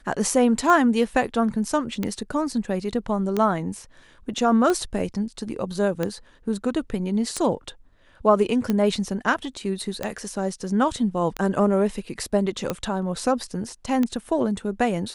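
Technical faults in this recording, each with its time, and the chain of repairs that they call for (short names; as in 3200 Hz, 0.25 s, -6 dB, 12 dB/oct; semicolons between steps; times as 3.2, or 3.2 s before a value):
tick 45 rpm -11 dBFS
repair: de-click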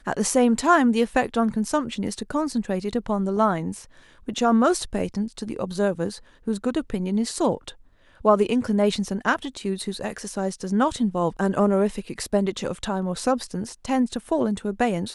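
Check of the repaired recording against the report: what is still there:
none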